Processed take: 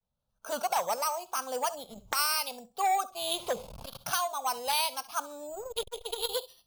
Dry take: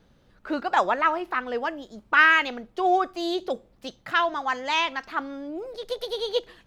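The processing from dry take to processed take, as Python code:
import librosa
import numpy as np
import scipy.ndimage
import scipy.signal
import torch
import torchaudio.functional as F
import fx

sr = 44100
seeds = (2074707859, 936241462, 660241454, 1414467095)

y = fx.zero_step(x, sr, step_db=-37.0, at=(3.33, 3.97))
y = fx.recorder_agc(y, sr, target_db=-9.5, rise_db_per_s=17.0, max_gain_db=30)
y = fx.high_shelf(y, sr, hz=3800.0, db=4.5)
y = fx.noise_reduce_blind(y, sr, reduce_db=18)
y = fx.dynamic_eq(y, sr, hz=2700.0, q=1.3, threshold_db=-34.0, ratio=4.0, max_db=5)
y = np.repeat(y[::6], 6)[:len(y)]
y = fx.fixed_phaser(y, sr, hz=780.0, stages=4)
y = fx.echo_feedback(y, sr, ms=68, feedback_pct=24, wet_db=-19)
y = fx.vibrato(y, sr, rate_hz=0.8, depth_cents=91.0)
y = fx.transformer_sat(y, sr, knee_hz=2600.0)
y = y * 10.0 ** (-7.5 / 20.0)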